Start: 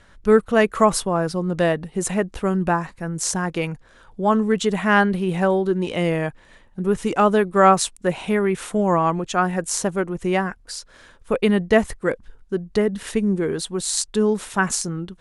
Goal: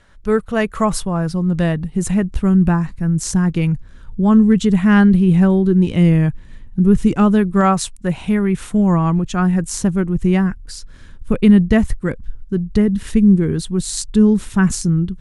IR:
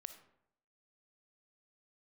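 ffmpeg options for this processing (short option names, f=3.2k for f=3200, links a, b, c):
-af "asubboost=boost=11:cutoff=190,volume=-1dB"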